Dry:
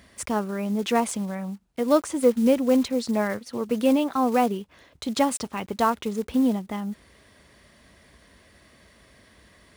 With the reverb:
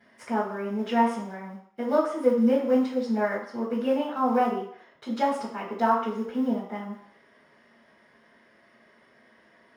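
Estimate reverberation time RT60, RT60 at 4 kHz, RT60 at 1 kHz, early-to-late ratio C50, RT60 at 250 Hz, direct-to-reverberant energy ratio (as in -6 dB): 0.60 s, 0.65 s, 0.65 s, 5.0 dB, 0.40 s, -13.0 dB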